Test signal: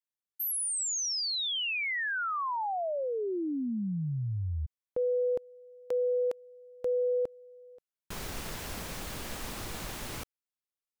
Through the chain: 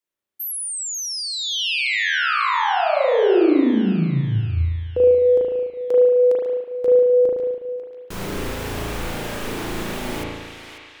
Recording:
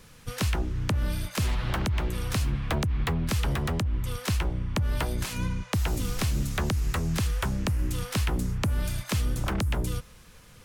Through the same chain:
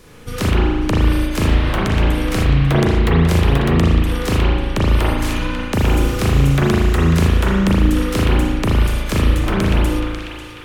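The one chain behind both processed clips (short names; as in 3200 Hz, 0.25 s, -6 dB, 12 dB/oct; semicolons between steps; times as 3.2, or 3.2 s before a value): bell 360 Hz +7 dB 1.1 oct; narrowing echo 0.544 s, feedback 57%, band-pass 2900 Hz, level -6 dB; spring tank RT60 1.3 s, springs 36 ms, chirp 55 ms, DRR -5 dB; gain +4.5 dB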